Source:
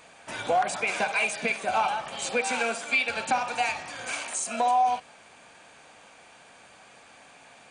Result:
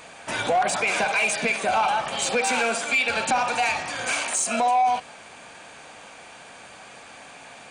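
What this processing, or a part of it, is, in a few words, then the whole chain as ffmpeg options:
soft clipper into limiter: -af "asoftclip=type=tanh:threshold=-18.5dB,alimiter=limit=-23.5dB:level=0:latency=1:release=35,volume=8dB"

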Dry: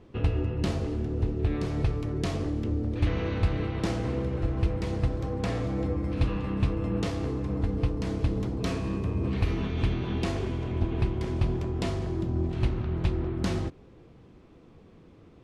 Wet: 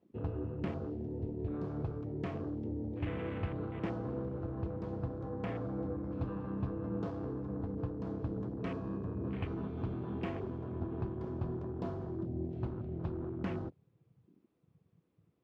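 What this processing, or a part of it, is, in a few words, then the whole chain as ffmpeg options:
over-cleaned archive recording: -af "highpass=110,lowpass=5600,afwtdn=0.01,volume=-7dB"

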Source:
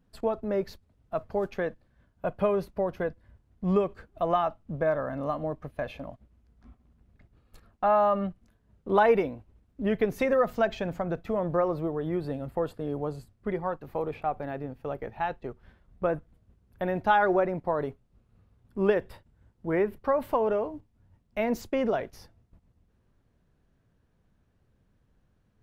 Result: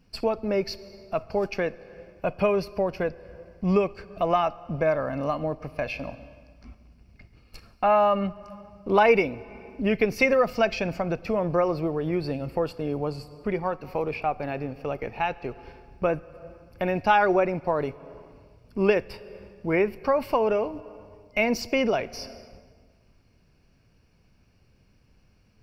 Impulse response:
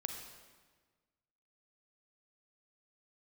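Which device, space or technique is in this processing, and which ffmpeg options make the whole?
ducked reverb: -filter_complex "[0:a]asplit=3[link_01][link_02][link_03];[1:a]atrim=start_sample=2205[link_04];[link_02][link_04]afir=irnorm=-1:irlink=0[link_05];[link_03]apad=whole_len=1130001[link_06];[link_05][link_06]sidechaincompress=threshold=-37dB:ratio=20:attack=8.9:release=363,volume=-2.5dB[link_07];[link_01][link_07]amix=inputs=2:normalize=0,superequalizer=12b=3.16:14b=3.98,volume=2dB"

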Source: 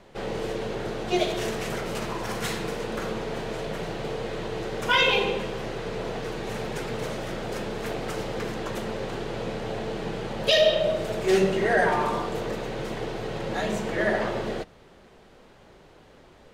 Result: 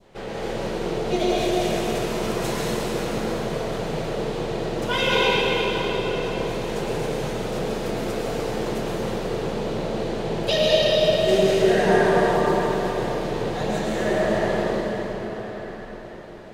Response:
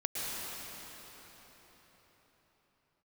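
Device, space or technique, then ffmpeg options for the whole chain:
cathedral: -filter_complex "[1:a]atrim=start_sample=2205[link_01];[0:a][link_01]afir=irnorm=-1:irlink=0,adynamicequalizer=threshold=0.0158:dfrequency=1700:dqfactor=0.72:tfrequency=1700:tqfactor=0.72:attack=5:release=100:ratio=0.375:range=2.5:mode=cutabove:tftype=bell"

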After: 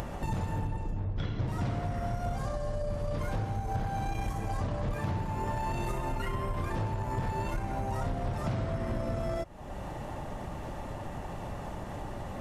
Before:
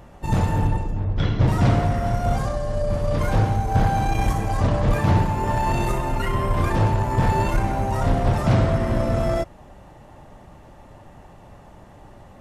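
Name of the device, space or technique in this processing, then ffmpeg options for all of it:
upward and downward compression: -af "acompressor=mode=upward:threshold=-21dB:ratio=2.5,acompressor=threshold=-24dB:ratio=6,volume=-5dB"

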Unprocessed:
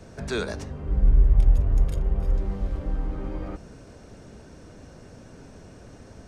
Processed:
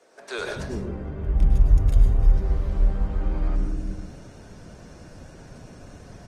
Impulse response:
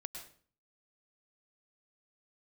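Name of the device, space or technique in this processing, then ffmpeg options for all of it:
speakerphone in a meeting room: -filter_complex "[0:a]asettb=1/sr,asplit=3[link_01][link_02][link_03];[link_01]atrim=end=0.864[link_04];[link_02]atrim=start=0.86:end=1.47,asetpts=PTS-STARTPTS,afade=type=in:duration=0.004:curve=qsin,afade=type=out:start_time=0.606:duration=0.004:curve=qsin,highshelf=frequency=4600:gain=-3.5[link_05];[link_03]atrim=start=1.466[link_06];[link_04][link_05]acrossfade=duration=0.004:curve1=hsin:curve2=qsin[link_07];[link_07][link_06]acrossfade=duration=0.004:curve1=qsin:curve2=hsin,acrossover=split=370[link_08][link_09];[link_08]adelay=380[link_10];[link_10][link_09]amix=inputs=2:normalize=0[link_11];[1:a]atrim=start_sample=2205[link_12];[link_11][link_12]afir=irnorm=-1:irlink=0,dynaudnorm=framelen=120:gausssize=5:maxgain=5.5dB" -ar 48000 -c:a libopus -b:a 20k

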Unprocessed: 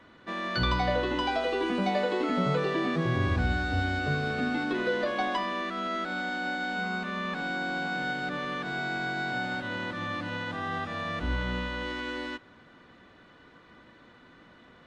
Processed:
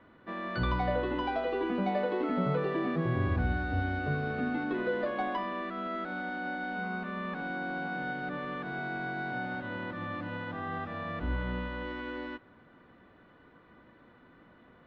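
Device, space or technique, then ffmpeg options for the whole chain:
phone in a pocket: -af "lowpass=3600,highshelf=frequency=2500:gain=-10.5,volume=-2dB"

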